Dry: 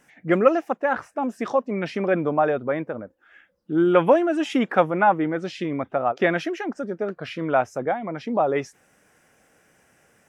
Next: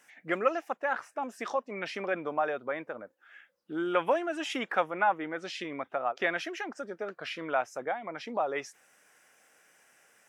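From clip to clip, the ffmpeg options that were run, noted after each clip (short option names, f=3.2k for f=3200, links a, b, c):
-filter_complex "[0:a]highpass=f=1.1k:p=1,asplit=2[a][b];[b]acompressor=threshold=-35dB:ratio=6,volume=-2dB[c];[a][c]amix=inputs=2:normalize=0,volume=-5dB"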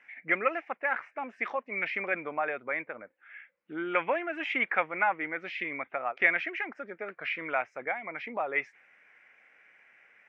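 -af "lowpass=f=2.2k:t=q:w=5.8,volume=-3.5dB"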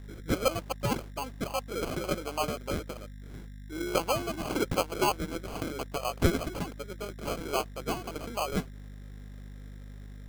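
-af "aeval=exprs='val(0)+0.00708*(sin(2*PI*50*n/s)+sin(2*PI*2*50*n/s)/2+sin(2*PI*3*50*n/s)/3+sin(2*PI*4*50*n/s)/4+sin(2*PI*5*50*n/s)/5)':c=same,acrusher=samples=24:mix=1:aa=0.000001"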